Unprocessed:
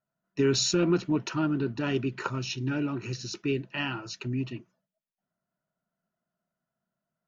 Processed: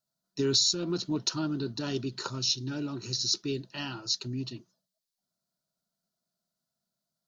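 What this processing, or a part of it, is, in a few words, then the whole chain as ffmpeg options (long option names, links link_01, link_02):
over-bright horn tweeter: -af "highshelf=frequency=3200:width_type=q:width=3:gain=10,alimiter=limit=-10dB:level=0:latency=1:release=431,volume=-4dB"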